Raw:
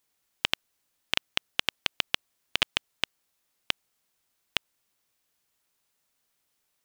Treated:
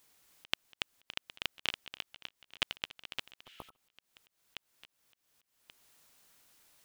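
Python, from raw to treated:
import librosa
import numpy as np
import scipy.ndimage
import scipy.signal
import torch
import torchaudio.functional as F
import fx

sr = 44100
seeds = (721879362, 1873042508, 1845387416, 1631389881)

y = fx.echo_feedback(x, sr, ms=283, feedback_pct=29, wet_db=-3.0)
y = fx.spec_repair(y, sr, seeds[0], start_s=3.49, length_s=0.25, low_hz=1300.0, high_hz=9500.0, source='both')
y = fx.auto_swell(y, sr, attack_ms=481.0)
y = y * 10.0 ** (9.0 / 20.0)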